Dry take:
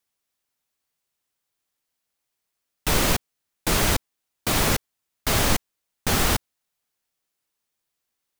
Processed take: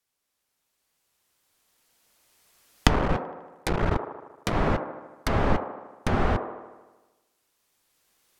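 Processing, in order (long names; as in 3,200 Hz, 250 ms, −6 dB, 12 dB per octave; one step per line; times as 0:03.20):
0:02.93–0:04.54: sub-harmonics by changed cycles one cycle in 3, muted
camcorder AGC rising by 7.9 dB per second
treble cut that deepens with the level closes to 1,400 Hz, closed at −22 dBFS
flanger 0.79 Hz, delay 1.5 ms, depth 4.9 ms, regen −82%
on a send: delay with a band-pass on its return 77 ms, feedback 63%, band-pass 630 Hz, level −5.5 dB
on the sum: level +4 dB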